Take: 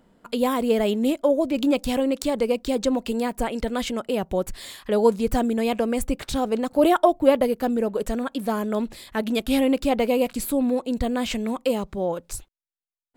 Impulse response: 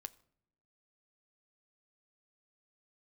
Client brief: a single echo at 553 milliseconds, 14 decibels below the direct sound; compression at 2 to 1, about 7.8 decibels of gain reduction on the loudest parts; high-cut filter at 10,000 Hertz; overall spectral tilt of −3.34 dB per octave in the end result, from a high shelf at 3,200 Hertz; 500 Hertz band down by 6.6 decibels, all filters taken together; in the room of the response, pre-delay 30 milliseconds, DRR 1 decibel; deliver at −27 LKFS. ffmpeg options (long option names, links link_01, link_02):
-filter_complex "[0:a]lowpass=10000,equalizer=frequency=500:width_type=o:gain=-8,highshelf=frequency=3200:gain=8.5,acompressor=threshold=-31dB:ratio=2,aecho=1:1:553:0.2,asplit=2[link_01][link_02];[1:a]atrim=start_sample=2205,adelay=30[link_03];[link_02][link_03]afir=irnorm=-1:irlink=0,volume=4dB[link_04];[link_01][link_04]amix=inputs=2:normalize=0,volume=2dB"